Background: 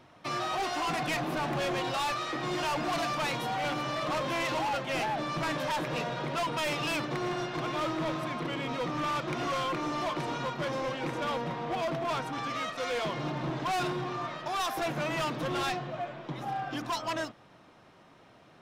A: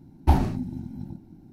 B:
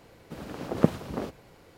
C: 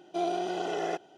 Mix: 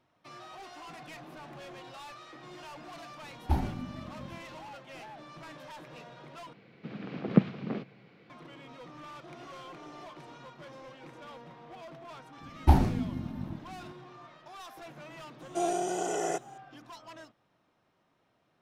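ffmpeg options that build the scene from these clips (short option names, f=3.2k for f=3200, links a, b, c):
-filter_complex "[1:a]asplit=2[a][b];[3:a]asplit=2[c][d];[0:a]volume=-15.5dB[e];[2:a]highpass=f=130:w=0.5412,highpass=f=130:w=1.3066,equalizer=f=130:t=q:w=4:g=7,equalizer=f=200:t=q:w=4:g=8,equalizer=f=580:t=q:w=4:g=-4,equalizer=f=920:t=q:w=4:g=-6,equalizer=f=2.3k:t=q:w=4:g=6,lowpass=f=4.1k:w=0.5412,lowpass=f=4.1k:w=1.3066[f];[c]acompressor=threshold=-41dB:ratio=6:attack=3.2:release=140:knee=1:detection=peak[g];[d]highshelf=f=5.6k:t=q:w=3:g=11[h];[e]asplit=2[i][j];[i]atrim=end=6.534[k];[f]atrim=end=1.77,asetpts=PTS-STARTPTS,volume=-3.5dB[l];[j]atrim=start=8.296[m];[a]atrim=end=1.52,asetpts=PTS-STARTPTS,volume=-9dB,afade=t=in:d=0.004:c=hsin,afade=t=out:st=1.516:d=0.004:c=hsin,adelay=3220[n];[g]atrim=end=1.17,asetpts=PTS-STARTPTS,volume=-10dB,afade=t=in:d=0.004:c=hsin,afade=t=out:st=1.166:d=0.004:c=hsin,adelay=9100[o];[b]atrim=end=1.52,asetpts=PTS-STARTPTS,volume=-1.5dB,afade=t=in:d=0.004:c=hsin,afade=t=out:st=1.516:d=0.004:c=hsin,adelay=12400[p];[h]atrim=end=1.17,asetpts=PTS-STARTPTS,afade=t=in:d=0.004:c=hsin,afade=t=out:st=1.166:d=0.004:c=hsin,adelay=15410[q];[k][l]acrossfade=d=0.004:c1=hsin:c2=hsin[r];[r][m]acrossfade=d=0.004:c1=hsin:c2=hsin[s];[s][n][o][p][q]amix=inputs=5:normalize=0"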